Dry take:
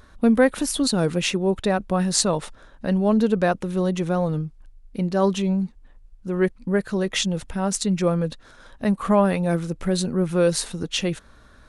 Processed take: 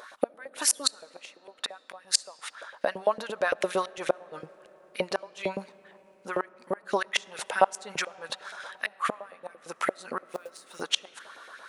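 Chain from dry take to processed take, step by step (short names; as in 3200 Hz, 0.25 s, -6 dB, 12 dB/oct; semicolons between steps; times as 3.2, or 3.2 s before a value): 2.85–3.61 level quantiser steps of 14 dB; flipped gate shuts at -13 dBFS, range -31 dB; LFO high-pass saw up 8.8 Hz 510–2500 Hz; 10.25–10.81 short-mantissa float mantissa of 2-bit; on a send: reverb RT60 5.7 s, pre-delay 25 ms, DRR 22 dB; on the sum: gain +5.5 dB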